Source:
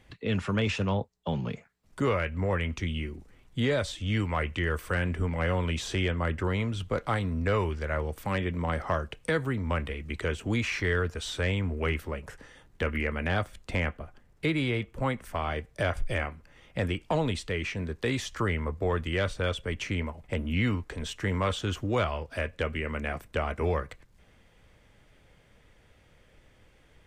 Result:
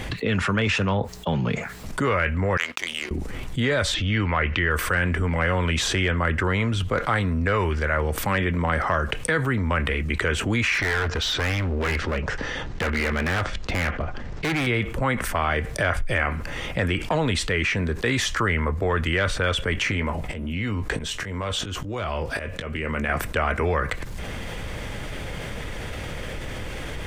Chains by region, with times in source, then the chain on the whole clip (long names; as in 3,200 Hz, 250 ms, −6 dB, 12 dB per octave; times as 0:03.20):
0:02.57–0:03.11: high-pass filter 540 Hz + power curve on the samples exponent 2 + upward compression, threshold −44 dBFS
0:03.94–0:04.71: low-pass filter 5,100 Hz 24 dB per octave + upward compression, threshold −33 dBFS
0:10.74–0:14.67: low-pass filter 6,000 Hz 24 dB per octave + hard clipping −31.5 dBFS
0:19.73–0:23.09: downward compressor 20 to 1, threshold −30 dBFS + volume swells 657 ms + double-tracking delay 19 ms −12 dB
whole clip: dynamic equaliser 1,600 Hz, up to +7 dB, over −47 dBFS, Q 1.2; envelope flattener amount 70%; level +1 dB